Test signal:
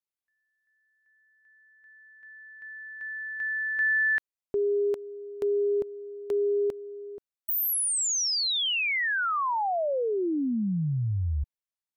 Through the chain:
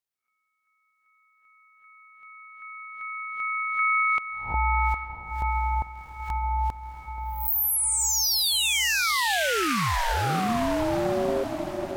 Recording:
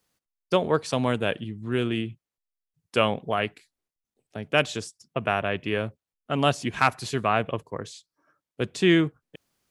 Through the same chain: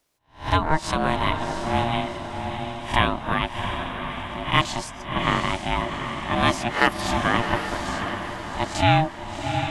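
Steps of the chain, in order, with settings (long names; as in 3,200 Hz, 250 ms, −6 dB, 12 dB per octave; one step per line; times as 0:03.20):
peak hold with a rise ahead of every peak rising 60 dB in 0.34 s
feedback delay with all-pass diffusion 724 ms, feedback 47%, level −6 dB
ring modulation 470 Hz
level +4 dB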